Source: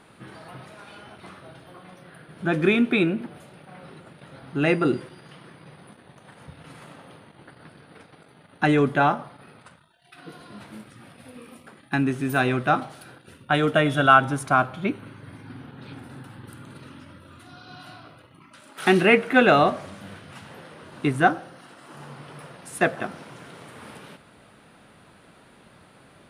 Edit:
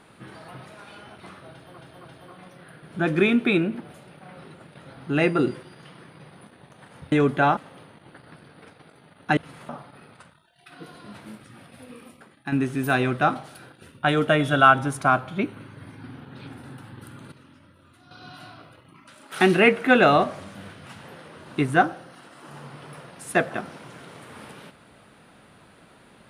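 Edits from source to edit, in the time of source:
1.51–1.78 s: loop, 3 plays
6.58–6.90 s: swap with 8.70–9.15 s
11.44–11.98 s: fade out, to -8 dB
16.78–17.57 s: gain -8 dB

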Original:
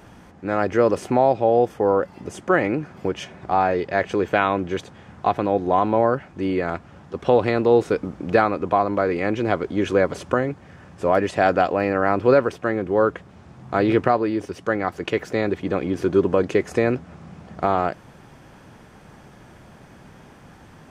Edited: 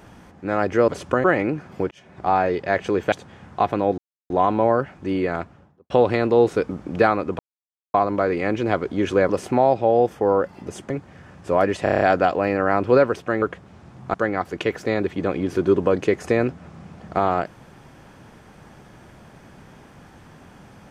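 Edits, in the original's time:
0.88–2.49 s: swap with 10.08–10.44 s
3.16–3.53 s: fade in
4.37–4.78 s: delete
5.64 s: insert silence 0.32 s
6.65–7.24 s: studio fade out
8.73 s: insert silence 0.55 s
11.37 s: stutter 0.03 s, 7 plays
12.78–13.05 s: delete
13.77–14.61 s: delete

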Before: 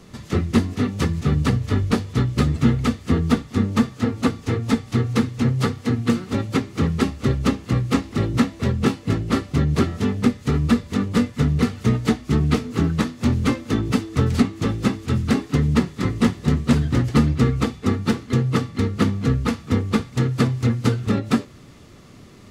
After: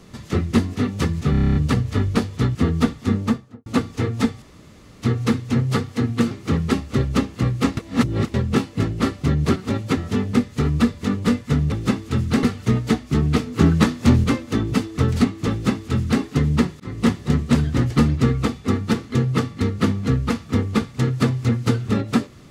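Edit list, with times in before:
1.31 s: stutter 0.03 s, 9 plays
2.31–3.04 s: delete
3.64–4.15 s: studio fade out
4.91 s: insert room tone 0.60 s
6.20–6.61 s: move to 9.86 s
8.07–8.64 s: reverse
12.77–13.42 s: gain +5 dB
14.69–15.40 s: copy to 11.61 s
15.98–16.23 s: fade in

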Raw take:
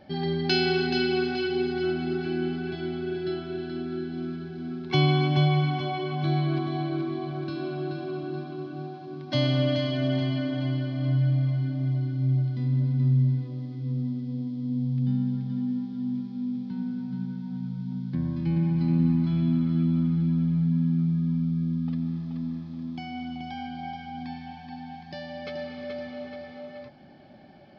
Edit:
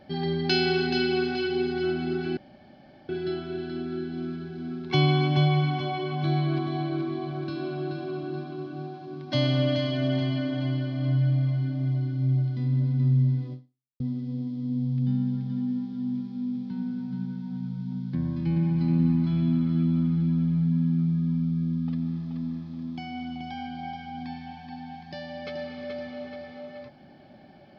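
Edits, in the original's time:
2.37–3.09 s: room tone
13.53–14.00 s: fade out exponential

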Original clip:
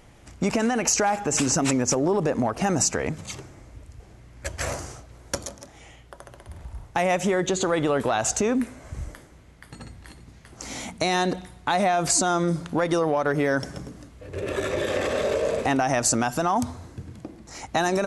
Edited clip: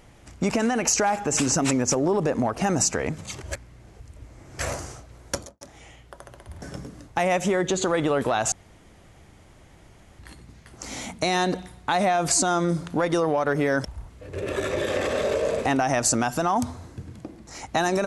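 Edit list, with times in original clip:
3.41–4.59 s: reverse
5.35–5.61 s: studio fade out
6.62–6.87 s: swap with 13.64–14.10 s
8.31–9.98 s: room tone

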